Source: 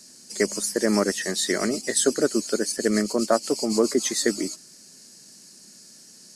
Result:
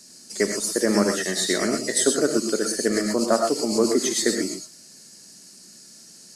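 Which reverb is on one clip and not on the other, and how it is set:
reverb whose tail is shaped and stops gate 140 ms rising, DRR 3.5 dB

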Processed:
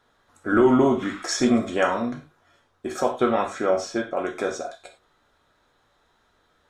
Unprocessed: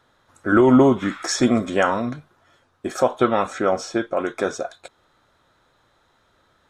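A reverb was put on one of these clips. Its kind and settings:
reverb whose tail is shaped and stops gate 130 ms falling, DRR 2.5 dB
level −4.5 dB

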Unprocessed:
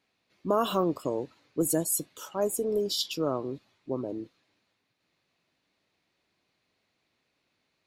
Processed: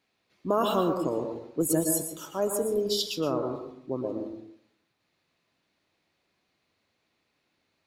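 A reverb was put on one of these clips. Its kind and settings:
dense smooth reverb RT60 0.68 s, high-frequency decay 0.3×, pre-delay 105 ms, DRR 4.5 dB

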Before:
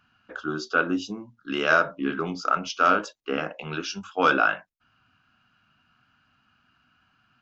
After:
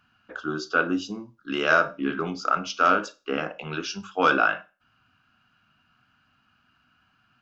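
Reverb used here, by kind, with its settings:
four-comb reverb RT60 0.32 s, combs from 32 ms, DRR 17 dB

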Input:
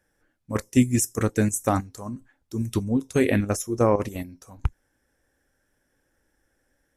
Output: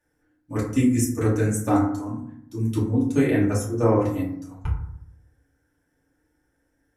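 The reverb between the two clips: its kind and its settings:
feedback delay network reverb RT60 0.7 s, low-frequency decay 1.45×, high-frequency decay 0.4×, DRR −7.5 dB
level −9 dB

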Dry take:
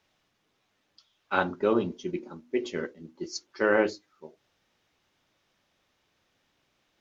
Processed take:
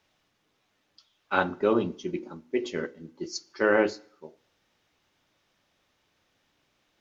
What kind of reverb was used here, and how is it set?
feedback delay network reverb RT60 0.66 s, low-frequency decay 0.95×, high-frequency decay 0.85×, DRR 18.5 dB
level +1 dB

